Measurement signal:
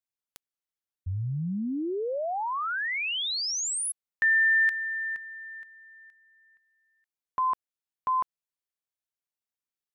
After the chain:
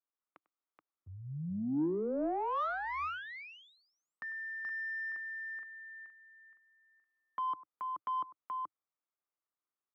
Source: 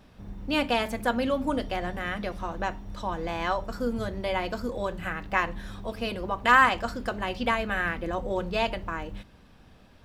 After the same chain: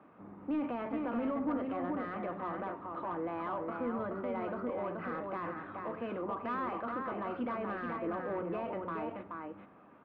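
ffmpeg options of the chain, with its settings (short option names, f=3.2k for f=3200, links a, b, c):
-filter_complex "[0:a]acrossover=split=290[a][b];[b]acompressor=threshold=-33dB:ratio=8:attack=0.69:release=40:knee=1:detection=peak[c];[a][c]amix=inputs=2:normalize=0,highpass=f=100:w=0.5412,highpass=f=100:w=1.3066,equalizer=f=110:t=q:w=4:g=-6,equalizer=f=310:t=q:w=4:g=7,equalizer=f=1.2k:t=q:w=4:g=7,equalizer=f=1.7k:t=q:w=4:g=-5,lowpass=f=2.2k:w=0.5412,lowpass=f=2.2k:w=1.3066,aecho=1:1:98|428:0.1|0.596,asplit=2[d][e];[e]highpass=f=720:p=1,volume=14dB,asoftclip=type=tanh:threshold=-17.5dB[f];[d][f]amix=inputs=2:normalize=0,lowpass=f=1.2k:p=1,volume=-6dB,volume=-6dB"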